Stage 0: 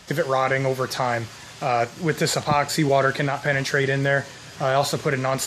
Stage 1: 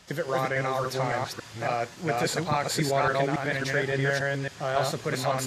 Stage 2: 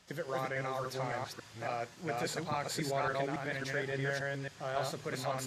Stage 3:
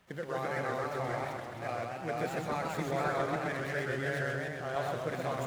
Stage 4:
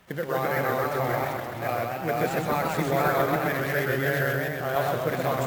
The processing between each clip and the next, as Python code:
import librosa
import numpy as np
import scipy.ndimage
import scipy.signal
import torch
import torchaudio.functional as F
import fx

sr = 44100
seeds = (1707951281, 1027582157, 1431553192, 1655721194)

y1 = fx.reverse_delay(x, sr, ms=280, wet_db=-0.5)
y1 = y1 * librosa.db_to_amplitude(-7.5)
y2 = fx.hum_notches(y1, sr, base_hz=50, count=3)
y2 = y2 * librosa.db_to_amplitude(-9.0)
y3 = scipy.ndimage.median_filter(y2, 9, mode='constant')
y3 = fx.echo_warbled(y3, sr, ms=129, feedback_pct=64, rate_hz=2.8, cents=189, wet_db=-3.5)
y4 = np.repeat(y3[::3], 3)[:len(y3)]
y4 = y4 * librosa.db_to_amplitude(8.5)